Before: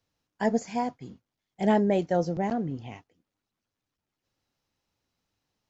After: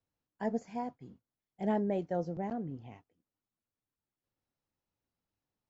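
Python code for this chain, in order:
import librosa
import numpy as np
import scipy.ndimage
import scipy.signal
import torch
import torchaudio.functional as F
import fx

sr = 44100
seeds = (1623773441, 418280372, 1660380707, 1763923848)

y = fx.high_shelf(x, sr, hz=2400.0, db=-10.5)
y = y * 10.0 ** (-8.0 / 20.0)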